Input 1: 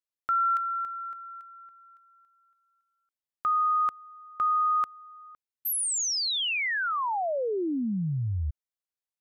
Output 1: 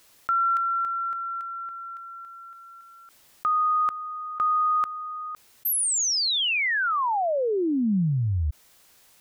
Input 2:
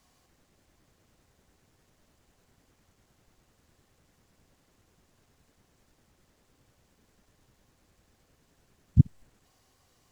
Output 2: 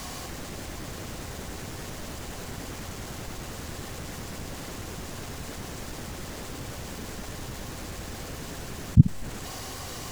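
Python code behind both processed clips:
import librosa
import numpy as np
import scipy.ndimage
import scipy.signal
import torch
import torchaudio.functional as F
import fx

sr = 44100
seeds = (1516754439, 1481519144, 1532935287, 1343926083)

y = fx.dynamic_eq(x, sr, hz=190.0, q=2.1, threshold_db=-42.0, ratio=4.0, max_db=5)
y = fx.env_flatten(y, sr, amount_pct=50)
y = y * 10.0 ** (1.5 / 20.0)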